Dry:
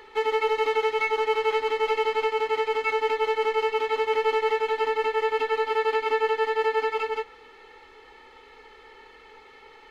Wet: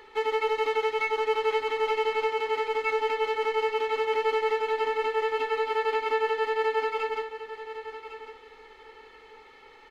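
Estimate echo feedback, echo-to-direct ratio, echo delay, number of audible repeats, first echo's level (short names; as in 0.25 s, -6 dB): 18%, -12.0 dB, 1.105 s, 2, -12.0 dB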